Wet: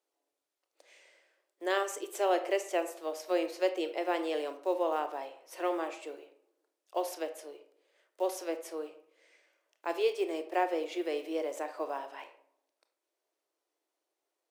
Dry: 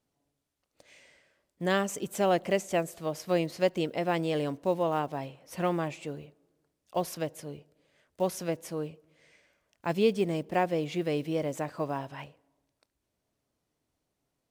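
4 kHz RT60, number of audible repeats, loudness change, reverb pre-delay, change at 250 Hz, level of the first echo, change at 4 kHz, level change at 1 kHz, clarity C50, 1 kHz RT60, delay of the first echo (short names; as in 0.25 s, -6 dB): 0.35 s, none, -3.0 dB, 24 ms, -6.5 dB, none, -3.0 dB, -1.5 dB, 11.5 dB, 0.55 s, none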